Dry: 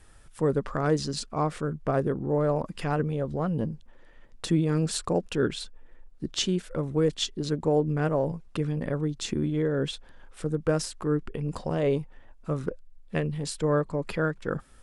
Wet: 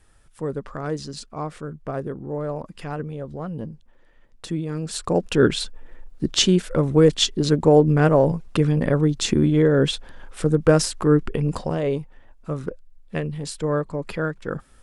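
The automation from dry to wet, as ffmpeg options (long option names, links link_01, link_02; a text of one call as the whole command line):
ffmpeg -i in.wav -af "volume=9.5dB,afade=type=in:start_time=4.85:duration=0.61:silence=0.237137,afade=type=out:start_time=11.35:duration=0.48:silence=0.398107" out.wav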